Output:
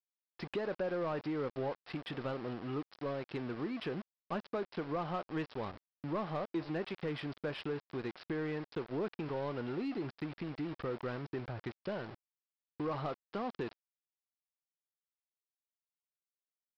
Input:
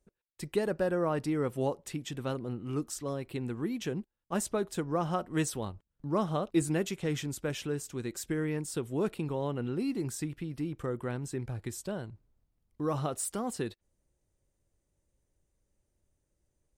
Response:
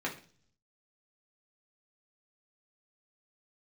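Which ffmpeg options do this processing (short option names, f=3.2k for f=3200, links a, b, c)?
-filter_complex "[0:a]acompressor=threshold=-42dB:ratio=2.5,aresample=11025,aeval=exprs='val(0)*gte(abs(val(0)),0.00355)':c=same,aresample=44100,asplit=2[a][b];[b]highpass=f=720:p=1,volume=14dB,asoftclip=type=tanh:threshold=-29.5dB[c];[a][c]amix=inputs=2:normalize=0,lowpass=f=1.5k:p=1,volume=-6dB,volume=3dB"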